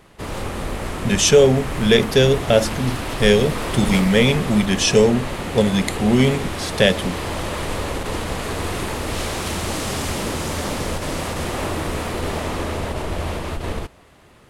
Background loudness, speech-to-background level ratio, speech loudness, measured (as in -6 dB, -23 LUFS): -26.5 LUFS, 9.0 dB, -17.5 LUFS